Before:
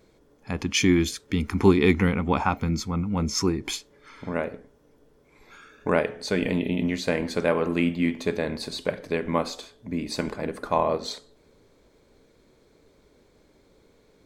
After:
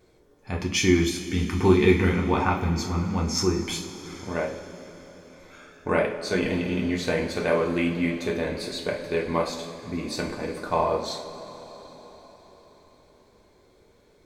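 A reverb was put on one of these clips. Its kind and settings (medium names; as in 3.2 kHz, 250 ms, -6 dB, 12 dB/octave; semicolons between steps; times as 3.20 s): two-slope reverb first 0.37 s, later 4.9 s, from -18 dB, DRR -1 dB; trim -3 dB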